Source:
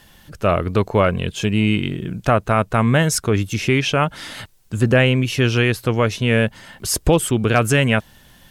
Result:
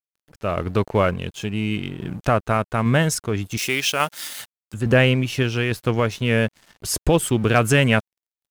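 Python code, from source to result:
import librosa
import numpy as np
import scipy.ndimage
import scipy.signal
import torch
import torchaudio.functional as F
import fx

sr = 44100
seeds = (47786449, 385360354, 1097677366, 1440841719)

y = np.sign(x) * np.maximum(np.abs(x) - 10.0 ** (-38.5 / 20.0), 0.0)
y = fx.tremolo_random(y, sr, seeds[0], hz=3.5, depth_pct=55)
y = fx.riaa(y, sr, side='recording', at=(3.57, 4.74))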